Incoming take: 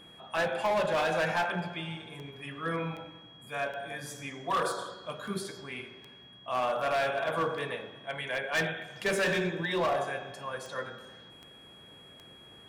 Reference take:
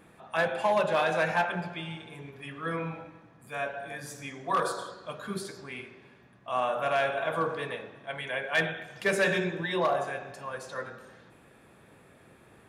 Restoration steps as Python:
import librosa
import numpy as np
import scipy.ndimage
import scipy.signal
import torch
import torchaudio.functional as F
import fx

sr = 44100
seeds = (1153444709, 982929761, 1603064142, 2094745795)

y = fx.fix_declip(x, sr, threshold_db=-24.0)
y = fx.fix_declick_ar(y, sr, threshold=10.0)
y = fx.notch(y, sr, hz=3300.0, q=30.0)